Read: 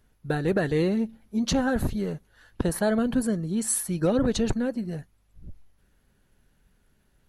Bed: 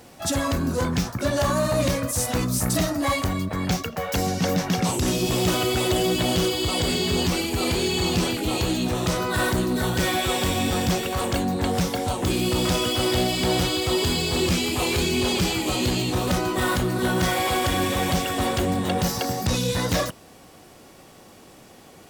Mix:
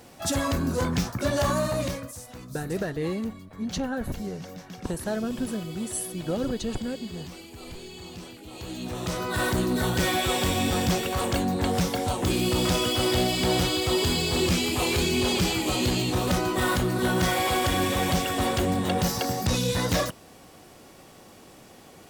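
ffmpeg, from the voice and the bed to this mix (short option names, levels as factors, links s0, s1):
-filter_complex "[0:a]adelay=2250,volume=0.531[s0];[1:a]volume=5.62,afade=t=out:st=1.5:d=0.71:silence=0.149624,afade=t=in:st=8.51:d=1.15:silence=0.141254[s1];[s0][s1]amix=inputs=2:normalize=0"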